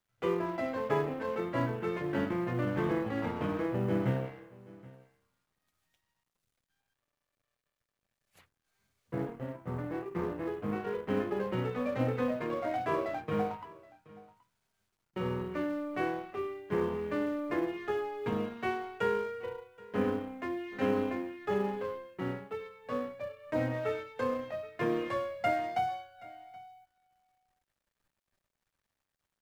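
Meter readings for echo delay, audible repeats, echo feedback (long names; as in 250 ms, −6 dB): 775 ms, 1, repeats not evenly spaced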